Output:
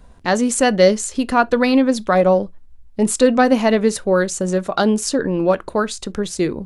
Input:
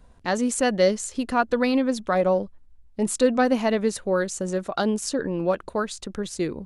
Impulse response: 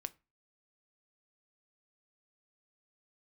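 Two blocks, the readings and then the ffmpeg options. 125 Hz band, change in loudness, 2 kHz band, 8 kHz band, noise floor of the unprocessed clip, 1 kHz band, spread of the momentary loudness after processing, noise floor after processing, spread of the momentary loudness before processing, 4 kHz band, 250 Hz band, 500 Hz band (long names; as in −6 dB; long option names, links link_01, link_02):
+7.5 dB, +7.0 dB, +7.0 dB, +7.0 dB, −52 dBFS, +7.0 dB, 8 LU, −43 dBFS, 8 LU, +7.0 dB, +7.0 dB, +6.5 dB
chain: -filter_complex "[0:a]asplit=2[link_01][link_02];[1:a]atrim=start_sample=2205,atrim=end_sample=3528[link_03];[link_02][link_03]afir=irnorm=-1:irlink=0,volume=4.5dB[link_04];[link_01][link_04]amix=inputs=2:normalize=0"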